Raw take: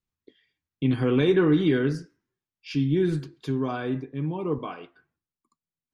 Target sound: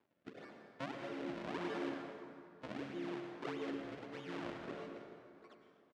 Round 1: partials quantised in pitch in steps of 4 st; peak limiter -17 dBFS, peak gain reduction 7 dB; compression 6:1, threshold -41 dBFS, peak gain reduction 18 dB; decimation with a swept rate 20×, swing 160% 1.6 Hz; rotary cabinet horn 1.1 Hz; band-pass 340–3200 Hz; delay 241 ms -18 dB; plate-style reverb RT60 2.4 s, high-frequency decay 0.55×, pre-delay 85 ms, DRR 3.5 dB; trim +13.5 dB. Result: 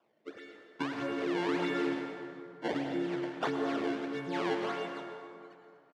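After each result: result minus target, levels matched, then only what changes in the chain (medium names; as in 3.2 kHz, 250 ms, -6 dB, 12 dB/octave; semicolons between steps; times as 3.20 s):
compression: peak gain reduction -9 dB; decimation with a swept rate: distortion -9 dB
change: compression 6:1, threshold -51.5 dBFS, peak gain reduction 26.5 dB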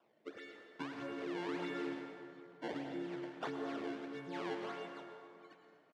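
decimation with a swept rate: distortion -9 dB
change: decimation with a swept rate 63×, swing 160% 1.6 Hz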